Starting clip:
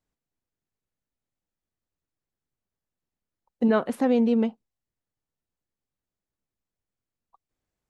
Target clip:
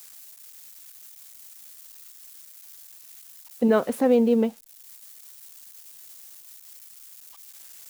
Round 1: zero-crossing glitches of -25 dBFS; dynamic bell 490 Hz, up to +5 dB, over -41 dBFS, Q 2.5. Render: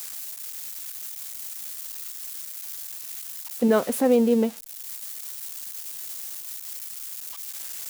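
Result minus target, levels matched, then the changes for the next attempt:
zero-crossing glitches: distortion +10 dB
change: zero-crossing glitches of -35.5 dBFS

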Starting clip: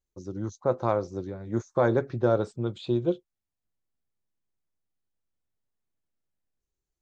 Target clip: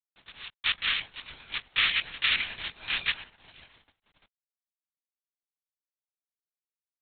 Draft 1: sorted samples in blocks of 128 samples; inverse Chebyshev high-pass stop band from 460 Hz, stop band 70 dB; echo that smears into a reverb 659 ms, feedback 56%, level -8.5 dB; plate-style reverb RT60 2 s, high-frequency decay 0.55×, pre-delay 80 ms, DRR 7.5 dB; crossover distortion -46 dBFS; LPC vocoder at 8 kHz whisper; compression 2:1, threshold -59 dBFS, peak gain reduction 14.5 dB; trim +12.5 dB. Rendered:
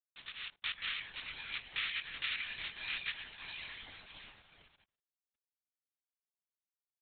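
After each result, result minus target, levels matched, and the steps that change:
compression: peak gain reduction +14.5 dB; crossover distortion: distortion -5 dB
remove: compression 2:1, threshold -59 dBFS, peak gain reduction 14.5 dB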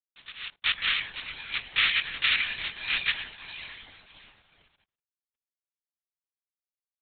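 crossover distortion: distortion -5 dB
change: crossover distortion -39 dBFS

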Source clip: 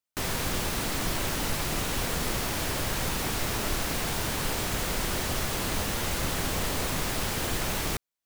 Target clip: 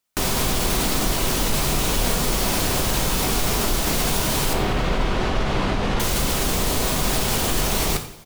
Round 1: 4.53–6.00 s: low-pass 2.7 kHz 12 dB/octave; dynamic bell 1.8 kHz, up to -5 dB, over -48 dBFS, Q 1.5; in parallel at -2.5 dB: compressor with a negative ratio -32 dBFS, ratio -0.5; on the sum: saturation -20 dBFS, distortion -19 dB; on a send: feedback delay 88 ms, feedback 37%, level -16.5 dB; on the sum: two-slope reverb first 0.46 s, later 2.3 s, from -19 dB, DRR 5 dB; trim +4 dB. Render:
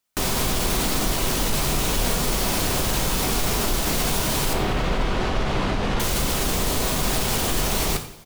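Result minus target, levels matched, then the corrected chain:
saturation: distortion +14 dB
4.53–6.00 s: low-pass 2.7 kHz 12 dB/octave; dynamic bell 1.8 kHz, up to -5 dB, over -48 dBFS, Q 1.5; in parallel at -2.5 dB: compressor with a negative ratio -32 dBFS, ratio -0.5; on the sum: saturation -11.5 dBFS, distortion -33 dB; on a send: feedback delay 88 ms, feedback 37%, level -16.5 dB; on the sum: two-slope reverb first 0.46 s, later 2.3 s, from -19 dB, DRR 5 dB; trim +4 dB

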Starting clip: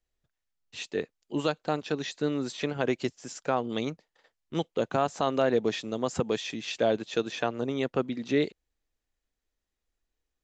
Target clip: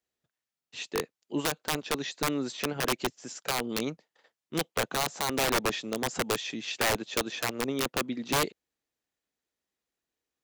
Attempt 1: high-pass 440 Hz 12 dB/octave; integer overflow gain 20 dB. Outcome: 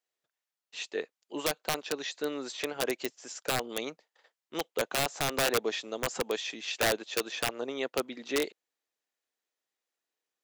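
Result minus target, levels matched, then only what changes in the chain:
125 Hz band -4.0 dB
change: high-pass 140 Hz 12 dB/octave

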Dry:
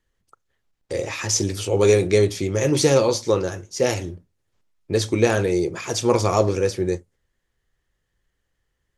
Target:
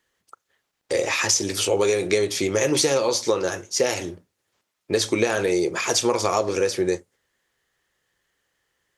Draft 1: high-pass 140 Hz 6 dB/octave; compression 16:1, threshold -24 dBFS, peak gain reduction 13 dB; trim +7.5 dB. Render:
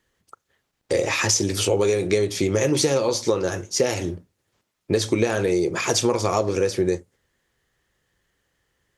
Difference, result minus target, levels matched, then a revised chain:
125 Hz band +6.5 dB
high-pass 530 Hz 6 dB/octave; compression 16:1, threshold -24 dBFS, peak gain reduction 10.5 dB; trim +7.5 dB

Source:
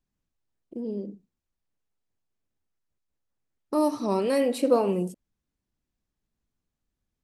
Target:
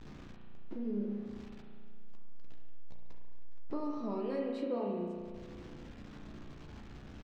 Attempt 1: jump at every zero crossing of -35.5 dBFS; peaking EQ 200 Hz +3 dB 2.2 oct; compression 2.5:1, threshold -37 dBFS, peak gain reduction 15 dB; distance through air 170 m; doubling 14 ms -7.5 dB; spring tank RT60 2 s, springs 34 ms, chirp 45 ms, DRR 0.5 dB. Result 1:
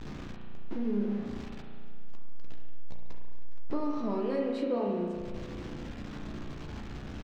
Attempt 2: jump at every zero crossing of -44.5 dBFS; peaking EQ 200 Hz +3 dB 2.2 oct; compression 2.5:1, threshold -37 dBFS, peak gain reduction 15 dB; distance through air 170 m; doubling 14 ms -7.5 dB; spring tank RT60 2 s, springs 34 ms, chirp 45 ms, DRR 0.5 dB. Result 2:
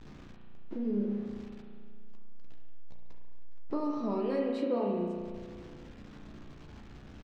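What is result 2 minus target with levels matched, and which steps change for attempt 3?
compression: peak gain reduction -5 dB
change: compression 2.5:1, threshold -45 dBFS, peak gain reduction 19.5 dB

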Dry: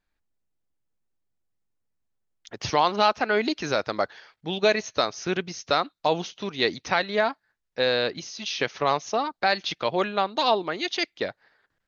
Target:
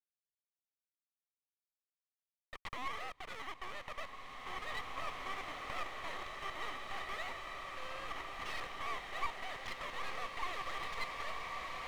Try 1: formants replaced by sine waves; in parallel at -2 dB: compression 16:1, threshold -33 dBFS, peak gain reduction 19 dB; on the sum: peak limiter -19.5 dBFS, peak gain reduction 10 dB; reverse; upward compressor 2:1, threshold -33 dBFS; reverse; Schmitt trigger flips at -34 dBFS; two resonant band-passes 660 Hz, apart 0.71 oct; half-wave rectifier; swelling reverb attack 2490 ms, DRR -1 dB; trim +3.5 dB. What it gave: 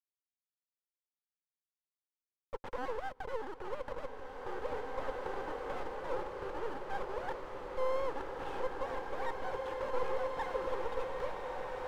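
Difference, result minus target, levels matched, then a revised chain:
compression: peak gain reduction -11 dB; 500 Hz band +10.5 dB
formants replaced by sine waves; in parallel at -2 dB: compression 16:1, threshold -44.5 dBFS, peak gain reduction 30 dB; on the sum: peak limiter -19.5 dBFS, peak gain reduction 9.5 dB; reverse; upward compressor 2:1, threshold -33 dBFS; reverse; Schmitt trigger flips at -34 dBFS; two resonant band-passes 1.5 kHz, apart 0.71 oct; half-wave rectifier; swelling reverb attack 2490 ms, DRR -1 dB; trim +3.5 dB

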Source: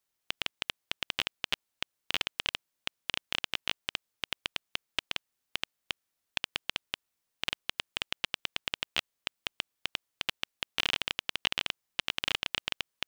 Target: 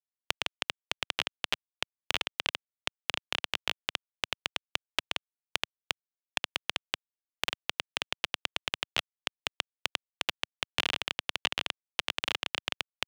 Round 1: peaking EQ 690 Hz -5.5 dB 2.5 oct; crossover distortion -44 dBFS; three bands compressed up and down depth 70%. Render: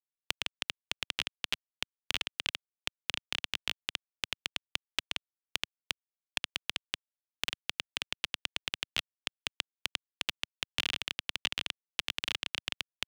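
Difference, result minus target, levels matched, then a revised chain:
500 Hz band -5.5 dB
peaking EQ 690 Hz +4 dB 2.5 oct; crossover distortion -44 dBFS; three bands compressed up and down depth 70%

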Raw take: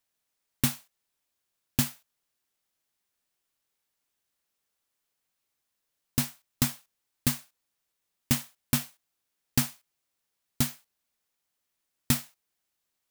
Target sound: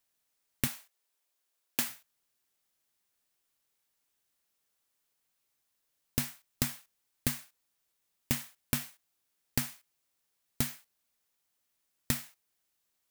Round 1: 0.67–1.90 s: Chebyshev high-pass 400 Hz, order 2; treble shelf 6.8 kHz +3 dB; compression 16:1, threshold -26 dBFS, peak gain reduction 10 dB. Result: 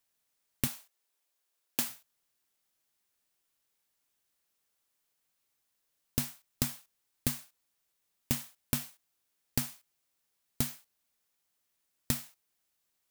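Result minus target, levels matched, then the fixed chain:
2 kHz band -3.5 dB
0.67–1.90 s: Chebyshev high-pass 400 Hz, order 2; treble shelf 6.8 kHz +3 dB; compression 16:1, threshold -26 dBFS, peak gain reduction 10 dB; dynamic bell 1.9 kHz, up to +5 dB, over -60 dBFS, Q 1.4

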